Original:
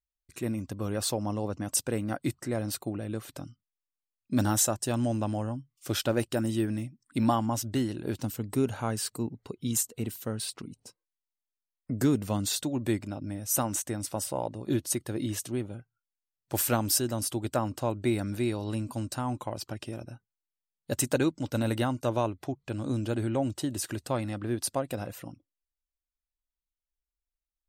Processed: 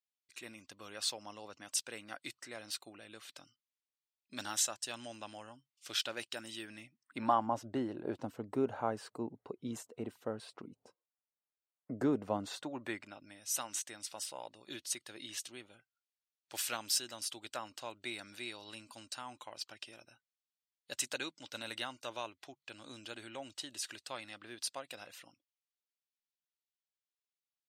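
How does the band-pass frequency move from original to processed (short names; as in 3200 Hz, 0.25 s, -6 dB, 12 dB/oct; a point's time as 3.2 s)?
band-pass, Q 0.97
6.65 s 3400 Hz
7.57 s 700 Hz
12.36 s 700 Hz
13.36 s 3500 Hz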